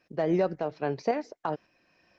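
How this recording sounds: tremolo saw up 1.8 Hz, depth 50%; Opus

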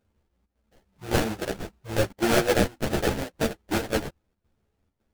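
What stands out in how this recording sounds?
aliases and images of a low sample rate 1.1 kHz, jitter 20%; chopped level 1.8 Hz, depth 65%, duty 80%; a shimmering, thickened sound

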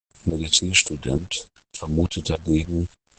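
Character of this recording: tremolo saw up 3.4 Hz, depth 85%; phasing stages 2, 3.7 Hz, lowest notch 260–2500 Hz; a quantiser's noise floor 8-bit, dither none; Opus

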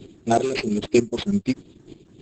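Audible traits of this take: phasing stages 4, 3.7 Hz, lowest notch 730–2100 Hz; aliases and images of a low sample rate 7.1 kHz, jitter 0%; chopped level 3.2 Hz, depth 60%, duty 20%; Opus

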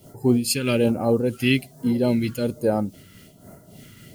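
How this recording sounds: a quantiser's noise floor 10-bit, dither triangular; phasing stages 2, 1.2 Hz, lowest notch 680–2900 Hz; random flutter of the level

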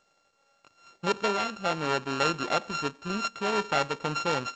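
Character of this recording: a buzz of ramps at a fixed pitch in blocks of 32 samples; G.722

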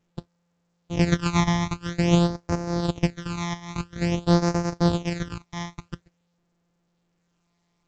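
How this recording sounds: a buzz of ramps at a fixed pitch in blocks of 256 samples; phasing stages 12, 0.49 Hz, lowest notch 460–3300 Hz; A-law

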